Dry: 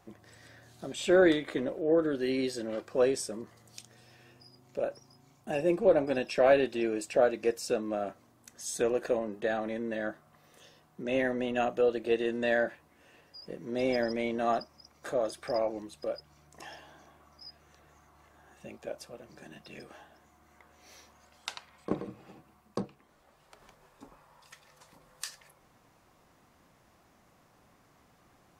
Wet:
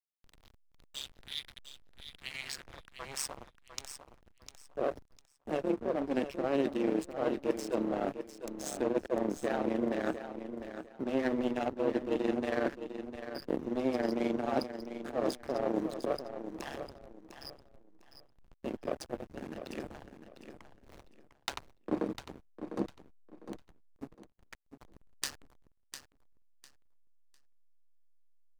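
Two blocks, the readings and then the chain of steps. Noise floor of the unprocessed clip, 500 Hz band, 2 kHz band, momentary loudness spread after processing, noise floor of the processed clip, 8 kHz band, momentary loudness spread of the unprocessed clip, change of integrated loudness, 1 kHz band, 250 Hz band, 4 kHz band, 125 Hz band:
-65 dBFS, -5.5 dB, -7.0 dB, 19 LU, -69 dBFS, -2.0 dB, 21 LU, -5.0 dB, -3.0 dB, -1.0 dB, -1.5 dB, -2.0 dB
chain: reverse; compression 16:1, threshold -36 dBFS, peak gain reduction 19.5 dB; reverse; AM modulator 140 Hz, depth 70%; Chebyshev shaper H 3 -21 dB, 5 -26 dB, 8 -23 dB, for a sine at -23 dBFS; high-pass sweep 3.5 kHz -> 270 Hz, 1.82–4.98 s; hysteresis with a dead band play -44.5 dBFS; on a send: feedback delay 702 ms, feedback 24%, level -10 dB; on the sum: trim +9 dB

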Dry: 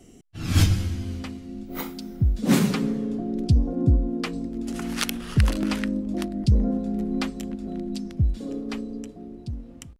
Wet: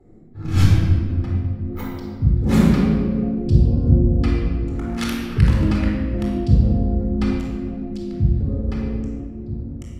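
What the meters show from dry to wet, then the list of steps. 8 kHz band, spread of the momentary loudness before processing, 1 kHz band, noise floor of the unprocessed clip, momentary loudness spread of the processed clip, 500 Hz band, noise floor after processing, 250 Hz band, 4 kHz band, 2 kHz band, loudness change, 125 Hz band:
-5.5 dB, 15 LU, +3.0 dB, -46 dBFS, 13 LU, +4.5 dB, -33 dBFS, +5.0 dB, -2.0 dB, +1.5 dB, +5.5 dB, +7.0 dB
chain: local Wiener filter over 15 samples; treble shelf 4.2 kHz -6.5 dB; simulated room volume 2000 m³, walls mixed, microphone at 4.1 m; trim -3.5 dB

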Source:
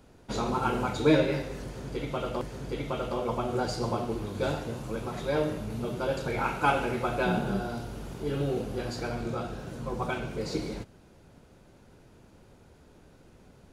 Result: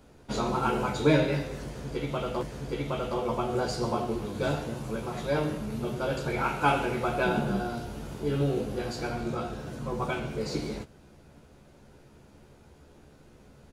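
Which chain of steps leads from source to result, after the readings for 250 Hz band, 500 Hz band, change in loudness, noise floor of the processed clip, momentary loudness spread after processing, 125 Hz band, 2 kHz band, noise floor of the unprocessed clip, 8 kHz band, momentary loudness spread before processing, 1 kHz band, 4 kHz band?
+0.5 dB, +0.5 dB, +0.5 dB, -56 dBFS, 10 LU, +1.5 dB, +1.0 dB, -57 dBFS, +1.0 dB, 10 LU, +0.5 dB, +0.5 dB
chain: doubling 14 ms -5 dB

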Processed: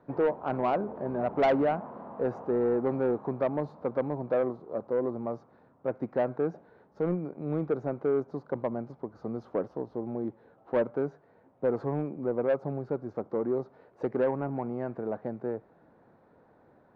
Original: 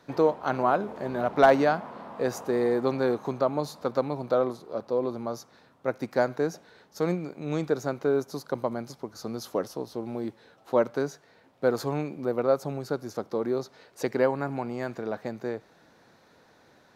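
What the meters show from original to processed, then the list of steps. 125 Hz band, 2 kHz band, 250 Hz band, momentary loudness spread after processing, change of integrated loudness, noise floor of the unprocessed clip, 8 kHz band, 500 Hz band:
-1.5 dB, -8.0 dB, -1.5 dB, 9 LU, -3.0 dB, -60 dBFS, under -25 dB, -2.5 dB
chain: low-pass 1 kHz 12 dB/octave; saturation -19 dBFS, distortion -13 dB

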